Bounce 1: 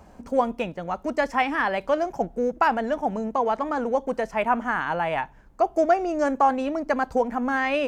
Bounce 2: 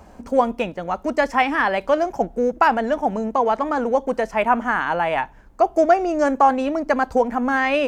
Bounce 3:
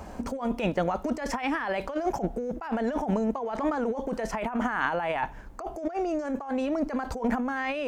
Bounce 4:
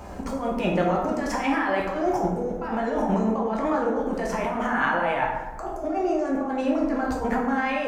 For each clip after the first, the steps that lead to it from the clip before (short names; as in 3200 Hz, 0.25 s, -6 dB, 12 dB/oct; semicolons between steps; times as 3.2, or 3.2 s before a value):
bell 150 Hz -6.5 dB 0.36 oct; gain +4.5 dB
negative-ratio compressor -27 dBFS, ratio -1; gain -2.5 dB
plate-style reverb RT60 1.2 s, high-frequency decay 0.5×, DRR -2.5 dB